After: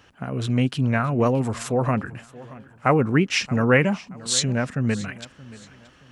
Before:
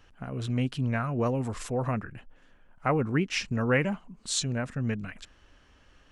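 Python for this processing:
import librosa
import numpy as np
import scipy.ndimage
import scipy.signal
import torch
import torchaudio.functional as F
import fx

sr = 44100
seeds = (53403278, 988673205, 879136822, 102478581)

p1 = scipy.signal.sosfilt(scipy.signal.butter(2, 91.0, 'highpass', fs=sr, output='sos'), x)
p2 = p1 + fx.echo_feedback(p1, sr, ms=626, feedback_pct=33, wet_db=-19.5, dry=0)
y = p2 * librosa.db_to_amplitude(7.5)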